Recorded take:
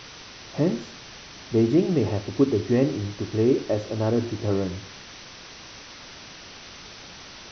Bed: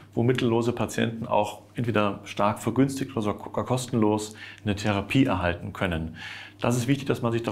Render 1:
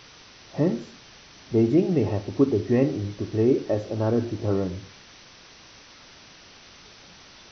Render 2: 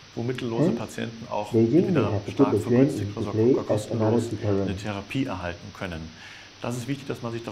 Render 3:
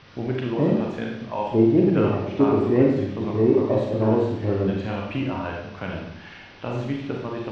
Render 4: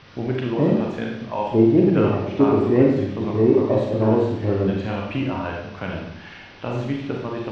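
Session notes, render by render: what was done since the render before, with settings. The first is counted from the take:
noise reduction from a noise print 6 dB
mix in bed −6 dB
high-frequency loss of the air 240 metres; four-comb reverb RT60 0.79 s, combs from 32 ms, DRR −0.5 dB
level +2 dB

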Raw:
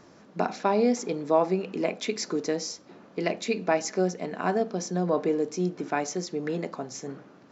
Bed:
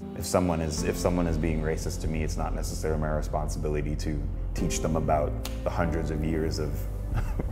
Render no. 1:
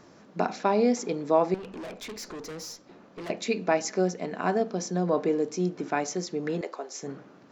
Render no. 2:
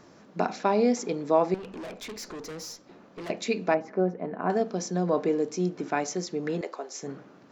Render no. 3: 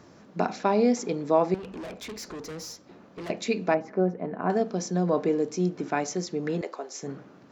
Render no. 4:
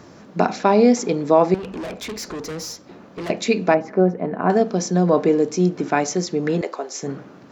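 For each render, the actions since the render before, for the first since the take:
0:01.54–0:03.30: tube saturation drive 36 dB, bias 0.45; 0:06.61–0:07.03: Chebyshev high-pass filter 380 Hz, order 3
0:03.74–0:04.50: low-pass filter 1,300 Hz
high-pass filter 51 Hz; low-shelf EQ 110 Hz +9 dB
level +8 dB; brickwall limiter −3 dBFS, peak gain reduction 2 dB

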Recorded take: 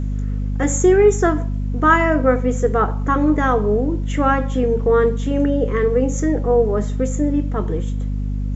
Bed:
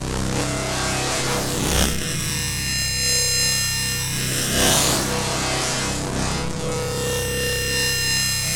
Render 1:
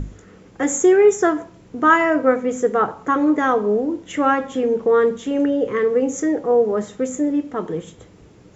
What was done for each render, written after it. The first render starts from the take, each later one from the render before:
mains-hum notches 50/100/150/200/250 Hz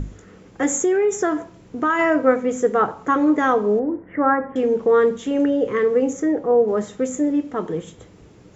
0:00.66–0:01.99: downward compressor, threshold −15 dBFS
0:03.79–0:04.56: elliptic low-pass filter 1,900 Hz, stop band 60 dB
0:06.13–0:06.68: high-shelf EQ 3,000 Hz −10 dB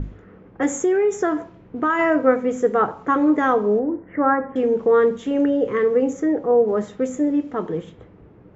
low-pass that shuts in the quiet parts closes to 1,500 Hz, open at −18 dBFS
high-shelf EQ 5,000 Hz −10 dB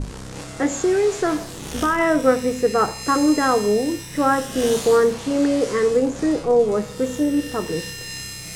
mix in bed −12 dB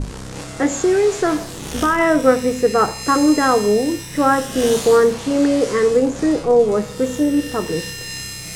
level +3 dB

